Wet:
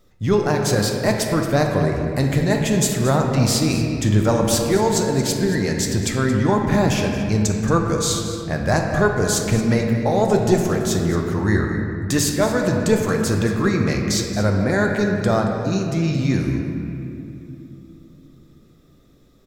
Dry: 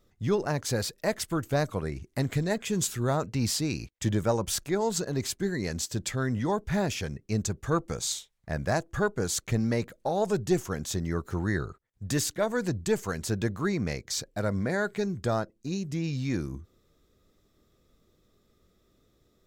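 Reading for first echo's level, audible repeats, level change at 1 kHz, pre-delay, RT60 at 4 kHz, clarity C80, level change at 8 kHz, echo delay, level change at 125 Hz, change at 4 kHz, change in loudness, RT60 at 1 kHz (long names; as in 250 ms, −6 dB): −12.5 dB, 1, +10.0 dB, 4 ms, 1.6 s, 3.5 dB, +8.5 dB, 225 ms, +11.0 dB, +9.0 dB, +10.0 dB, 2.4 s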